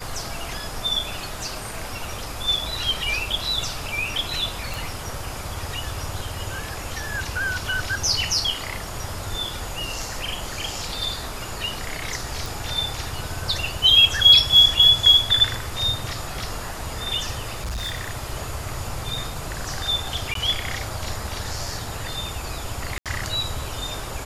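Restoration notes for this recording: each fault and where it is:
0:04.74: click
0:12.46: click
0:17.55–0:18.11: clipping −25 dBFS
0:20.34–0:20.35: drop-out 13 ms
0:22.98–0:23.06: drop-out 77 ms

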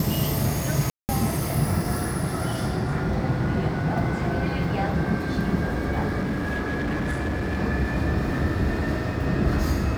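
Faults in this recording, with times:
0:00.90–0:01.09: drop-out 189 ms
0:06.21–0:07.62: clipping −22.5 dBFS

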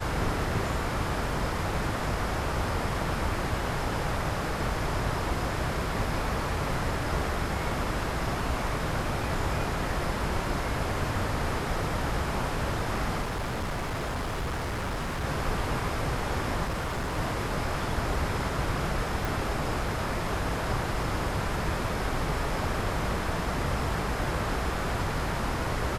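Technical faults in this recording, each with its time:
0:13.21–0:15.25: clipping −28 dBFS
0:16.64–0:17.18: clipping −27 dBFS
0:19.25: click

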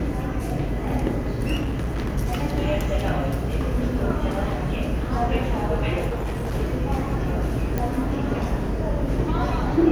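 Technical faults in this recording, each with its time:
0:01.60–0:02.11: clipping −22 dBFS
0:06.08–0:06.55: clipping −23 dBFS
0:07.78: click −12 dBFS

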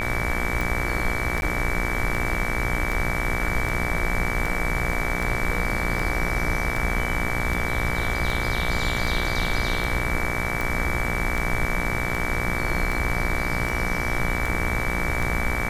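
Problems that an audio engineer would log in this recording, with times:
mains buzz 60 Hz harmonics 39 −29 dBFS
scratch tick 78 rpm
whistle 2,300 Hz −29 dBFS
0:01.41–0:01.42: drop-out 11 ms
0:04.93: drop-out 2.6 ms

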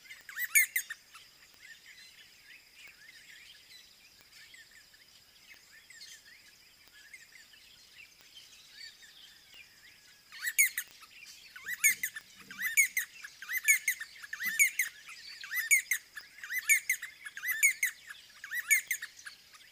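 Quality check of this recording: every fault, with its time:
scratch tick 45 rpm −34 dBFS
0:10.91: click −31 dBFS

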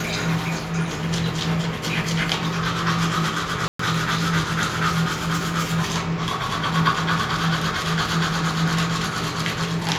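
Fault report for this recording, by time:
0:03.68–0:03.79: drop-out 114 ms

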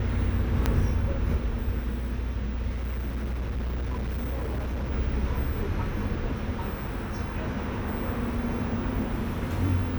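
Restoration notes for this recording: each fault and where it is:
0:00.66: click −9 dBFS
0:02.69–0:04.92: clipping −26.5 dBFS

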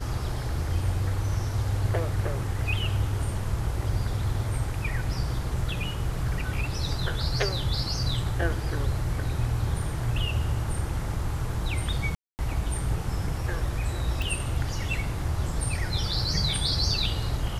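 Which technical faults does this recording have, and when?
0:12.15–0:12.39: drop-out 239 ms
0:14.22: click

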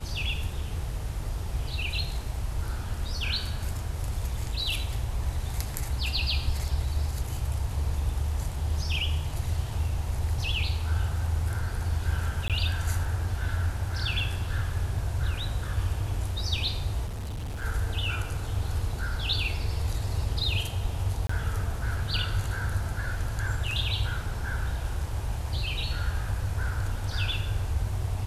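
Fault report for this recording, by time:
0:12.48–0:12.50: drop-out 17 ms
0:17.06–0:17.65: clipping −31 dBFS
0:21.27–0:21.29: drop-out 24 ms

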